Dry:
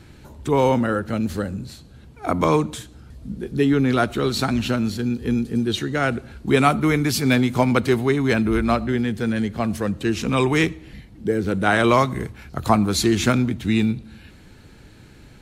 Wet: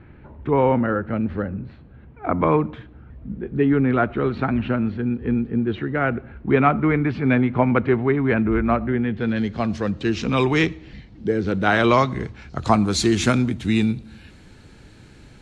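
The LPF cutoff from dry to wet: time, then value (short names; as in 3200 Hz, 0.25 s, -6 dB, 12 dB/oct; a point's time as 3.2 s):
LPF 24 dB/oct
9 s 2300 Hz
9.5 s 5800 Hz
12.2 s 5800 Hz
13.23 s 10000 Hz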